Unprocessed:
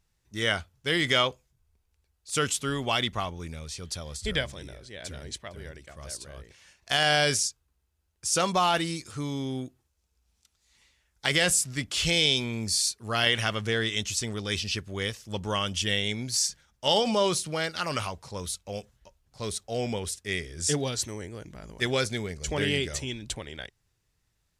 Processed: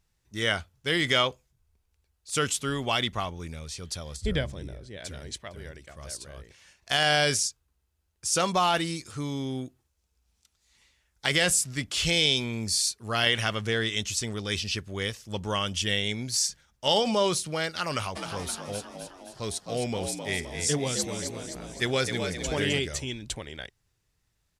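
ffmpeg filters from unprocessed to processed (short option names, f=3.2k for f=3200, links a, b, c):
-filter_complex "[0:a]asettb=1/sr,asplit=3[a][b][c];[a]atrim=end=4.164[d];[b]atrim=start=4.16:end=4.97,asetpts=PTS-STARTPTS,afade=t=in:d=0.004:c=qsin,afade=t=out:st=0.806:d=0.004:c=qsin,tiltshelf=f=680:g=5.5[e];[c]atrim=start=4.966[f];[d][e]acrossfade=d=0.004:c1=hsin:c2=qsin[g];[g][f]acrossfade=d=0.004:c1=qsin:c2=hsin,asplit=3[h][i][j];[h]afade=t=out:st=18.15:d=0.02[k];[i]asplit=8[l][m][n][o][p][q][r][s];[m]adelay=260,afreqshift=61,volume=-7dB[t];[n]adelay=520,afreqshift=122,volume=-12.4dB[u];[o]adelay=780,afreqshift=183,volume=-17.7dB[v];[p]adelay=1040,afreqshift=244,volume=-23.1dB[w];[q]adelay=1300,afreqshift=305,volume=-28.4dB[x];[r]adelay=1560,afreqshift=366,volume=-33.8dB[y];[s]adelay=1820,afreqshift=427,volume=-39.1dB[z];[l][t][u][v][w][x][y][z]amix=inputs=8:normalize=0,afade=t=in:st=18.15:d=0.02,afade=t=out:st=22.78:d=0.02[aa];[j]afade=t=in:st=22.78:d=0.02[ab];[k][aa][ab]amix=inputs=3:normalize=0"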